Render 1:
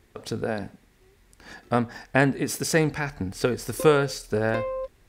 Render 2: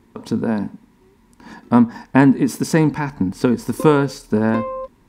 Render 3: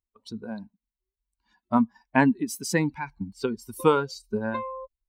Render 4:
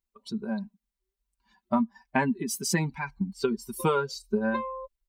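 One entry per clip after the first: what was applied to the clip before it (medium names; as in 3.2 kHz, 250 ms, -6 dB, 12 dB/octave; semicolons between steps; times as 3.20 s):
small resonant body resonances 230/940 Hz, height 16 dB, ringing for 25 ms; trim -1 dB
expander on every frequency bin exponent 2; bass shelf 410 Hz -9.5 dB
comb 5.1 ms, depth 84%; compression 6:1, threshold -21 dBFS, peak gain reduction 8.5 dB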